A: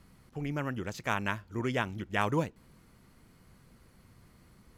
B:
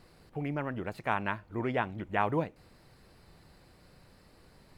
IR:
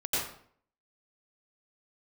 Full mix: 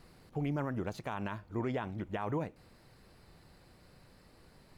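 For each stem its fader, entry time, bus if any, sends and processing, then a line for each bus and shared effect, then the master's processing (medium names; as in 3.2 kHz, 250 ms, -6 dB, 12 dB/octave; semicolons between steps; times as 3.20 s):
-4.5 dB, 0.00 s, no send, auto duck -10 dB, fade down 1.70 s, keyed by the second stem
-1.5 dB, 0.00 s, no send, none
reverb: none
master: peak limiter -26 dBFS, peak gain reduction 10.5 dB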